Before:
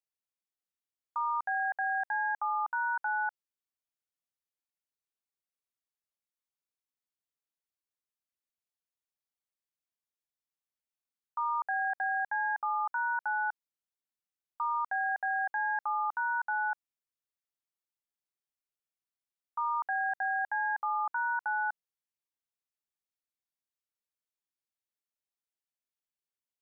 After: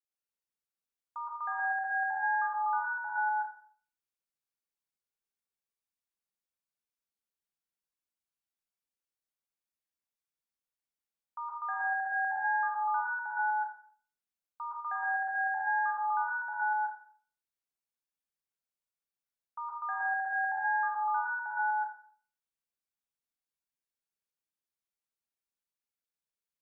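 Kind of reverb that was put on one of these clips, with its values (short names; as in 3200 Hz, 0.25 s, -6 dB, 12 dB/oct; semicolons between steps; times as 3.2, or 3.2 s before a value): plate-style reverb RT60 0.51 s, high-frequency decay 0.75×, pre-delay 0.105 s, DRR -3.5 dB; gain -7 dB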